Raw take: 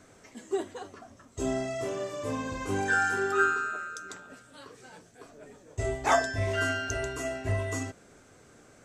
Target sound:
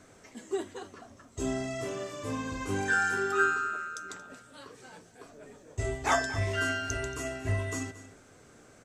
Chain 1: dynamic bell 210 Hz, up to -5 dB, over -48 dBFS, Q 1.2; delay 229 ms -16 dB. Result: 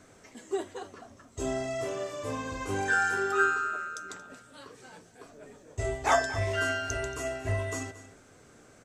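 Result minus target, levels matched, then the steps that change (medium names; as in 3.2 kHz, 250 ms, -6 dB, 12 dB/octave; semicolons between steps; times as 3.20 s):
250 Hz band -3.0 dB
change: dynamic bell 620 Hz, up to -5 dB, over -48 dBFS, Q 1.2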